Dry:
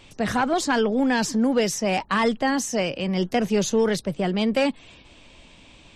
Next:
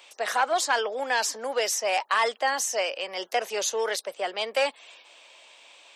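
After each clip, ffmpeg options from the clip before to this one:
-af "highpass=f=530:w=0.5412,highpass=f=530:w=1.3066,highshelf=f=11000:g=7.5"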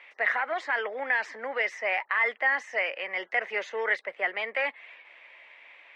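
-af "alimiter=limit=0.112:level=0:latency=1:release=69,lowpass=f=2000:t=q:w=7.5,volume=0.596"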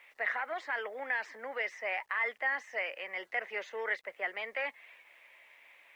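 -af "acrusher=bits=10:mix=0:aa=0.000001,volume=0.447"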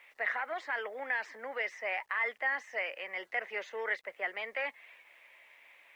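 -af anull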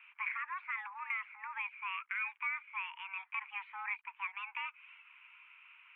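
-af "highpass=f=560:t=q:w=0.5412,highpass=f=560:t=q:w=1.307,lowpass=f=2300:t=q:w=0.5176,lowpass=f=2300:t=q:w=0.7071,lowpass=f=2300:t=q:w=1.932,afreqshift=390,acompressor=threshold=0.00398:ratio=1.5,volume=1.26"

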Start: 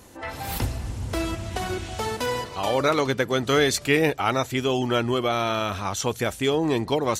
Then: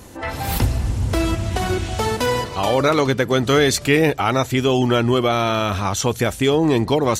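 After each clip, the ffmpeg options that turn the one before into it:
-filter_complex "[0:a]lowshelf=f=270:g=4.5,asplit=2[s0][s1];[s1]alimiter=limit=0.158:level=0:latency=1:release=120,volume=1[s2];[s0][s2]amix=inputs=2:normalize=0"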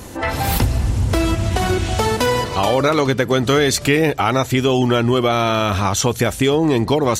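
-af "acompressor=threshold=0.0708:ratio=2,volume=2.11"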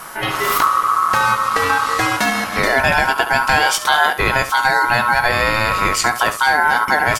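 -af "aecho=1:1:19|70:0.299|0.237,aeval=exprs='val(0)+0.0112*sin(2*PI*11000*n/s)':c=same,aeval=exprs='val(0)*sin(2*PI*1200*n/s)':c=same,volume=1.41"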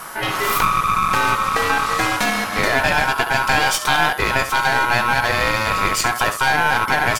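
-af "aeval=exprs='clip(val(0),-1,0.112)':c=same"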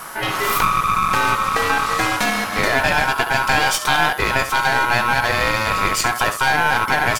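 -af "acrusher=bits=7:mix=0:aa=0.000001"

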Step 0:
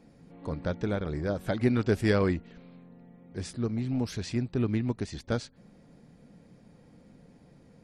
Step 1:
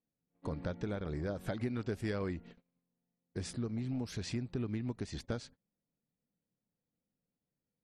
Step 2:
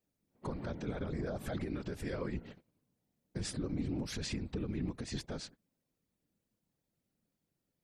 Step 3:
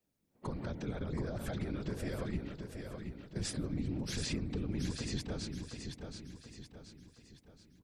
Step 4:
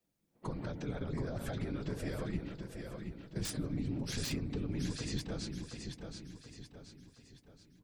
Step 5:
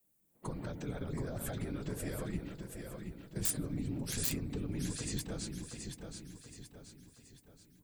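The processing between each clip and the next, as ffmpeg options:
-af "agate=range=0.0178:threshold=0.00562:ratio=16:detection=peak,acompressor=threshold=0.0178:ratio=4"
-af "alimiter=level_in=3.55:limit=0.0631:level=0:latency=1:release=50,volume=0.282,afftfilt=real='hypot(re,im)*cos(2*PI*random(0))':imag='hypot(re,im)*sin(2*PI*random(1))':win_size=512:overlap=0.75,volume=3.55"
-filter_complex "[0:a]acrossover=split=200|3000[s0][s1][s2];[s1]acompressor=threshold=0.00891:ratio=6[s3];[s0][s3][s2]amix=inputs=3:normalize=0,asplit=2[s4][s5];[s5]aecho=0:1:726|1452|2178|2904|3630:0.501|0.221|0.097|0.0427|0.0188[s6];[s4][s6]amix=inputs=2:normalize=0,volume=1.19"
-filter_complex "[0:a]acrossover=split=420[s0][s1];[s1]aeval=exprs='(mod(35.5*val(0)+1,2)-1)/35.5':c=same[s2];[s0][s2]amix=inputs=2:normalize=0,flanger=delay=5.8:depth=1.6:regen=-53:speed=0.35:shape=sinusoidal,volume=1.58"
-af "aexciter=amount=4.7:drive=3.6:freq=7200,volume=0.891"

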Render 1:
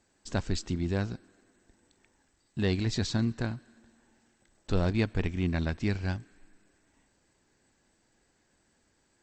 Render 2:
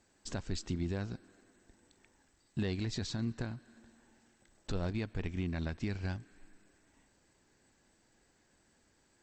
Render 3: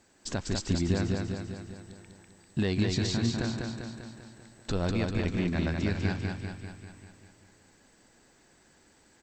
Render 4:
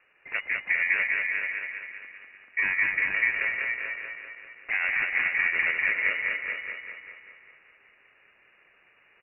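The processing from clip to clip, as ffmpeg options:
-af "alimiter=level_in=1.19:limit=0.0631:level=0:latency=1:release=324,volume=0.841"
-af "lowshelf=f=70:g=-6,aecho=1:1:197|394|591|788|985|1182|1379|1576:0.668|0.388|0.225|0.13|0.0756|0.0439|0.0254|0.0148,volume=2.24"
-af "aeval=exprs='val(0)*sin(2*PI*820*n/s)':c=same,aecho=1:1:436:0.501,lowpass=f=2500:t=q:w=0.5098,lowpass=f=2500:t=q:w=0.6013,lowpass=f=2500:t=q:w=0.9,lowpass=f=2500:t=q:w=2.563,afreqshift=-2900,volume=1.68"

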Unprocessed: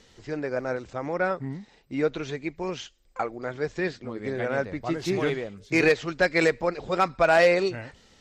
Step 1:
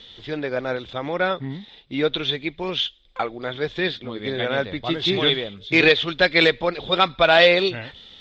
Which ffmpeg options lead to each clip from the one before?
-af "lowpass=f=3500:t=q:w=13,volume=1.41"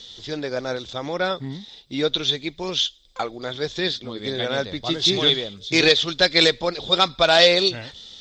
-af "highshelf=f=3900:t=q:w=1.5:g=14,volume=0.891"

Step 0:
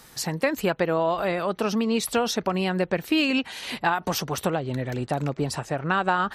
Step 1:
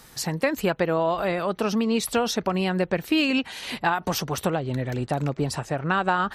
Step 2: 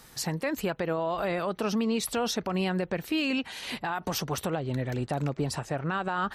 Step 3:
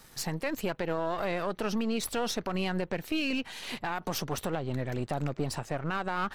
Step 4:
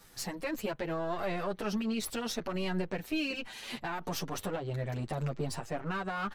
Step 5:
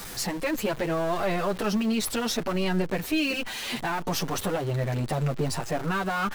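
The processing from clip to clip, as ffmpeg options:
-af "lowshelf=f=120:g=4"
-af "alimiter=limit=0.141:level=0:latency=1:release=44,volume=0.708"
-af "aeval=exprs='if(lt(val(0),0),0.447*val(0),val(0))':c=same"
-filter_complex "[0:a]asplit=2[s0][s1];[s1]adelay=8,afreqshift=0.69[s2];[s0][s2]amix=inputs=2:normalize=1"
-af "aeval=exprs='val(0)+0.5*0.00944*sgn(val(0))':c=same,volume=2"

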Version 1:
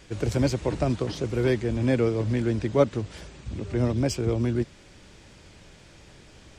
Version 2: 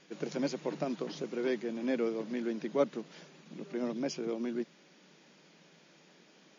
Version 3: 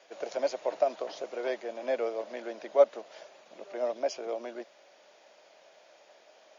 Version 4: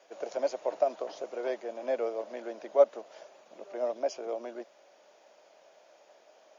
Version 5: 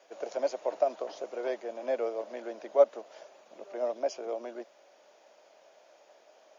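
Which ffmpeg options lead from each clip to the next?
-af "afftfilt=real='re*between(b*sr/4096,150,7100)':imag='im*between(b*sr/4096,150,7100)':win_size=4096:overlap=0.75,volume=0.398"
-af "highpass=f=630:t=q:w=4.9"
-af "equalizer=f=125:t=o:w=1:g=-4,equalizer=f=2000:t=o:w=1:g=-4,equalizer=f=4000:t=o:w=1:g=-5"
-af "highpass=150"

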